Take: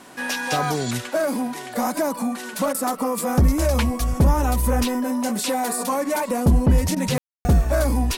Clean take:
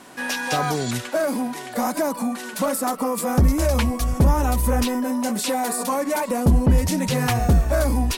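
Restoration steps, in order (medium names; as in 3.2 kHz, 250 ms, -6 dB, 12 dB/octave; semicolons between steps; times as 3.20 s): room tone fill 7.18–7.45 s; interpolate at 2.73/6.95 s, 13 ms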